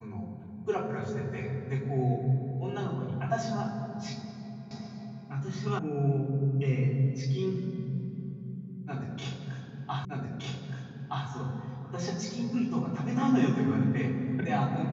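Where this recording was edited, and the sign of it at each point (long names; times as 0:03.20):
0:04.71: the same again, the last 0.56 s
0:05.79: cut off before it has died away
0:10.05: the same again, the last 1.22 s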